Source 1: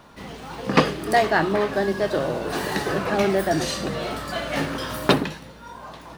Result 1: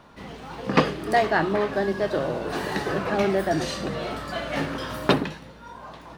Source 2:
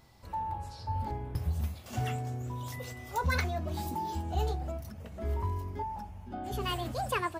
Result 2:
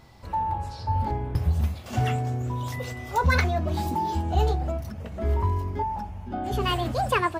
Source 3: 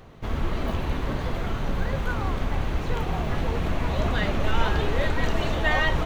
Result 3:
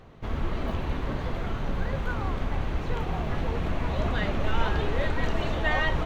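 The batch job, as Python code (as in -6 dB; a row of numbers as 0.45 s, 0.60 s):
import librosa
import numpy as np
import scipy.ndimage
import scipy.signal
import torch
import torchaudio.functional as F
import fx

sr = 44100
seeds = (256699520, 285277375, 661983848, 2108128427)

y = fx.high_shelf(x, sr, hz=6400.0, db=-8.5)
y = y * 10.0 ** (-26 / 20.0) / np.sqrt(np.mean(np.square(y)))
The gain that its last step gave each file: -1.5 dB, +8.5 dB, -2.5 dB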